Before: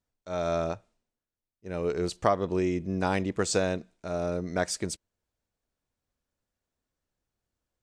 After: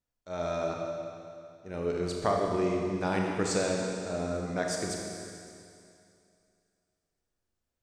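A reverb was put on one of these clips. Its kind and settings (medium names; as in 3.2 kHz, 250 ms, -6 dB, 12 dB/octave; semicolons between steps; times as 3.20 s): Schroeder reverb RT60 2.5 s, combs from 27 ms, DRR -0.5 dB; trim -4.5 dB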